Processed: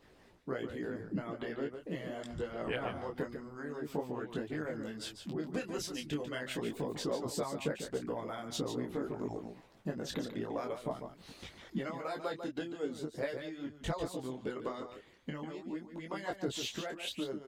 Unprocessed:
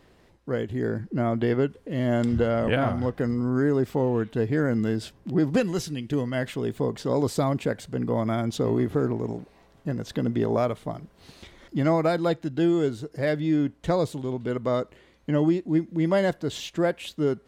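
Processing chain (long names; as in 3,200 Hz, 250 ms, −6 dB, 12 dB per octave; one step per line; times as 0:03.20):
downward compressor 6 to 1, threshold −28 dBFS, peak gain reduction 11 dB
low-shelf EQ 200 Hz −5 dB
single-tap delay 145 ms −7.5 dB
harmonic and percussive parts rebalanced harmonic −15 dB
micro pitch shift up and down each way 15 cents
level +4 dB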